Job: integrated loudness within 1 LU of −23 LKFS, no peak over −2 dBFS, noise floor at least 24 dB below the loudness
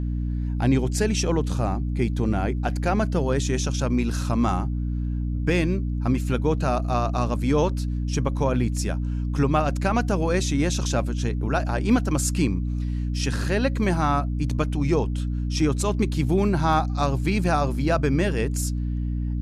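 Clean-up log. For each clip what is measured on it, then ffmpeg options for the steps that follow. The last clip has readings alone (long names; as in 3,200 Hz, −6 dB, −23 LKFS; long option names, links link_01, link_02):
mains hum 60 Hz; hum harmonics up to 300 Hz; level of the hum −23 dBFS; integrated loudness −24.0 LKFS; sample peak −7.5 dBFS; target loudness −23.0 LKFS
→ -af "bandreject=frequency=60:width_type=h:width=6,bandreject=frequency=120:width_type=h:width=6,bandreject=frequency=180:width_type=h:width=6,bandreject=frequency=240:width_type=h:width=6,bandreject=frequency=300:width_type=h:width=6"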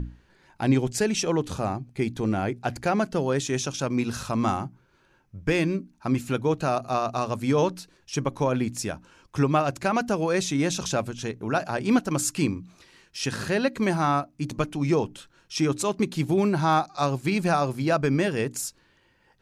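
mains hum none found; integrated loudness −26.0 LKFS; sample peak −9.0 dBFS; target loudness −23.0 LKFS
→ -af "volume=3dB"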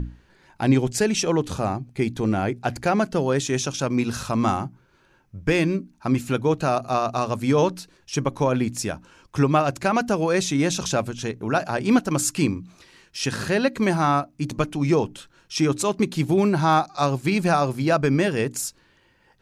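integrated loudness −23.0 LKFS; sample peak −6.0 dBFS; background noise floor −60 dBFS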